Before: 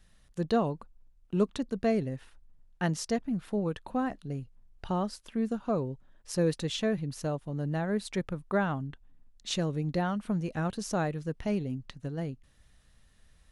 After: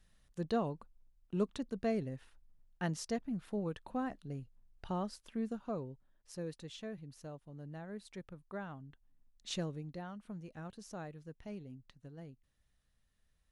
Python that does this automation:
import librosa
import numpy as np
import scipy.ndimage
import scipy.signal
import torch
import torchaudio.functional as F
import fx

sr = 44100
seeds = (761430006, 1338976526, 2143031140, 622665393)

y = fx.gain(x, sr, db=fx.line((5.36, -7.0), (6.48, -15.5), (8.8, -15.5), (9.59, -7.0), (9.93, -15.5)))